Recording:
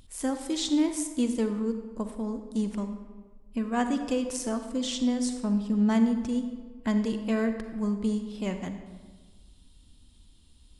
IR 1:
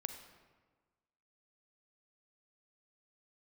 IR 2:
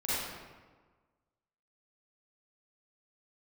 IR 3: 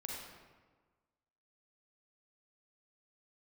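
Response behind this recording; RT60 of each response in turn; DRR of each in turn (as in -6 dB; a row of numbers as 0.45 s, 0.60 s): 1; 1.4 s, 1.4 s, 1.4 s; 7.0 dB, -11.5 dB, -2.5 dB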